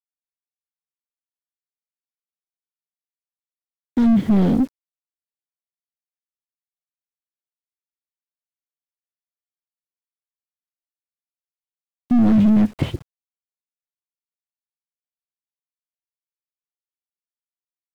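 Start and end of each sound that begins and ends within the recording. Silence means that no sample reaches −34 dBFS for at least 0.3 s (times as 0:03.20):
0:03.97–0:04.67
0:12.11–0:13.02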